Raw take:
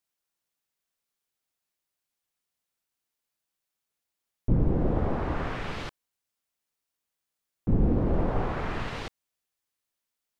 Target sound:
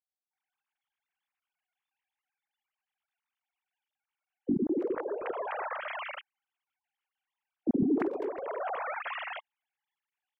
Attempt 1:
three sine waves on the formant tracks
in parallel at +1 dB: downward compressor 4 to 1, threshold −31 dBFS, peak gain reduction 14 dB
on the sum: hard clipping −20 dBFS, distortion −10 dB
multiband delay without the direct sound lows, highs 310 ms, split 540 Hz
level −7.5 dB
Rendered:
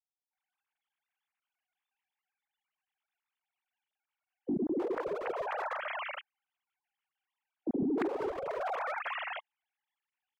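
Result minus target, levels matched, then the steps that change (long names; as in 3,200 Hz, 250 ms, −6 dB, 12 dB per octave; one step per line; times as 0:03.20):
hard clipping: distortion +12 dB
change: hard clipping −12.5 dBFS, distortion −22 dB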